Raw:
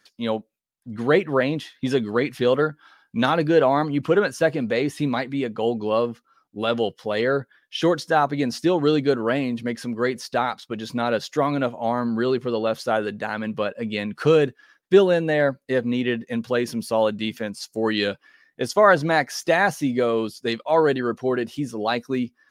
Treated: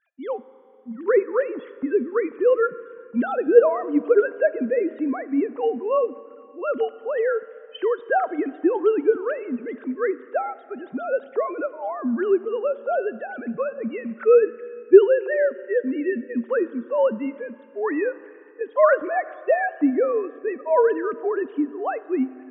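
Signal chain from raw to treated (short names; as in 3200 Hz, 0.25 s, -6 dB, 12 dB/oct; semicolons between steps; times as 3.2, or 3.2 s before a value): sine-wave speech; LPF 1800 Hz 12 dB/oct; Schroeder reverb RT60 2.7 s, combs from 27 ms, DRR 16 dB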